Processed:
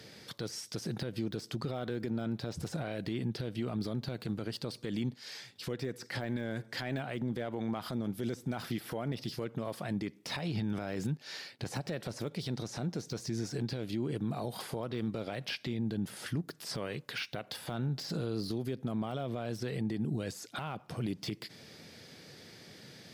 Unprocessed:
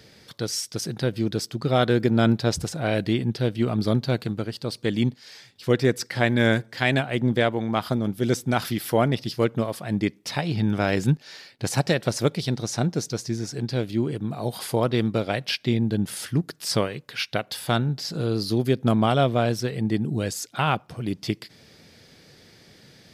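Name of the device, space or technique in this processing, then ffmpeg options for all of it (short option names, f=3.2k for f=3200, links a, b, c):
podcast mastering chain: -af "highpass=99,deesser=0.9,acompressor=threshold=-27dB:ratio=3,alimiter=level_in=1.5dB:limit=-24dB:level=0:latency=1:release=49,volume=-1.5dB" -ar 48000 -c:a libmp3lame -b:a 128k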